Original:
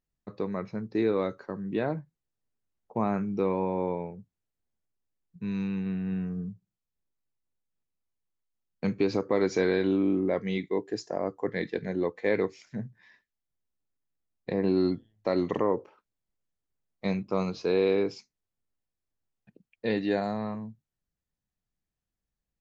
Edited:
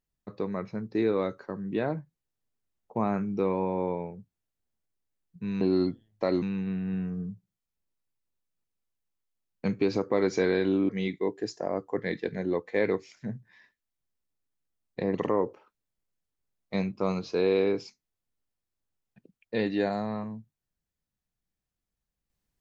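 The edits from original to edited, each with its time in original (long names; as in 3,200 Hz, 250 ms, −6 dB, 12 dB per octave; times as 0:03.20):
0:10.08–0:10.39: remove
0:14.65–0:15.46: move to 0:05.61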